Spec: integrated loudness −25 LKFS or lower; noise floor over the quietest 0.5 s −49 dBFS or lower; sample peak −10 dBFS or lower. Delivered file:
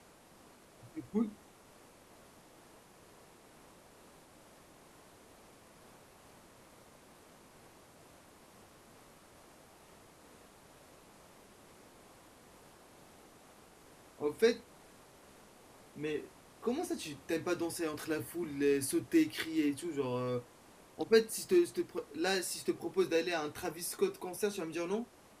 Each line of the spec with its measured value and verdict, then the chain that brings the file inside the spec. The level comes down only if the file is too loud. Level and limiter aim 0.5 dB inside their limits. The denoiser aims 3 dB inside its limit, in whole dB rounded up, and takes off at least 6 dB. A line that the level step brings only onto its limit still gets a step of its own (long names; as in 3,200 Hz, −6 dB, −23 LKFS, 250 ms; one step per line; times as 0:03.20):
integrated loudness −35.0 LKFS: in spec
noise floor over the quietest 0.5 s −60 dBFS: in spec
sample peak −14.5 dBFS: in spec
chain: no processing needed